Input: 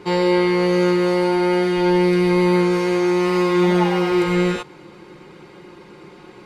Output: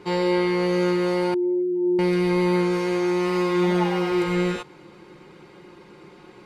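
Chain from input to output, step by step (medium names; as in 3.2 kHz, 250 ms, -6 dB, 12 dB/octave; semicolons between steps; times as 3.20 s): 1.34–1.99 s: spectral contrast enhancement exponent 3.4; trim -4.5 dB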